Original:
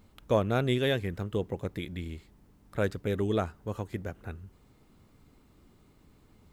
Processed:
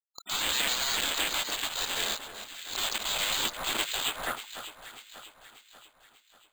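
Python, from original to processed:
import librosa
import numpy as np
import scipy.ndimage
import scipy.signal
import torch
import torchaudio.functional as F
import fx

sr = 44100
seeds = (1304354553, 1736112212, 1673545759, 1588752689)

p1 = fx.quant_companded(x, sr, bits=2)
p2 = fx.band_shelf(p1, sr, hz=2400.0, db=14.0, octaves=1.3)
p3 = fx.spec_gate(p2, sr, threshold_db=-15, keep='weak')
p4 = fx.filter_sweep_lowpass(p3, sr, from_hz=4500.0, to_hz=570.0, start_s=3.99, end_s=4.59, q=2.9)
p5 = p4 + fx.echo_alternate(p4, sr, ms=295, hz=1600.0, feedback_pct=69, wet_db=-9.0, dry=0)
p6 = np.repeat(scipy.signal.resample_poly(p5, 1, 4), 4)[:len(p5)]
y = fx.pre_swell(p6, sr, db_per_s=88.0)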